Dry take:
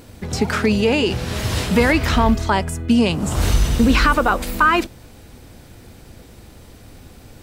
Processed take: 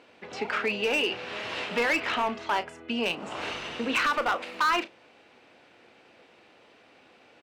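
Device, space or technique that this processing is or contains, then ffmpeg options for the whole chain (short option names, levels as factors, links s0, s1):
megaphone: -filter_complex "[0:a]highpass=460,lowpass=3100,equalizer=f=2600:t=o:w=0.38:g=8.5,bandreject=f=2500:w=27,asoftclip=type=hard:threshold=0.2,asplit=2[s0][s1];[s1]adelay=34,volume=0.237[s2];[s0][s2]amix=inputs=2:normalize=0,volume=0.473"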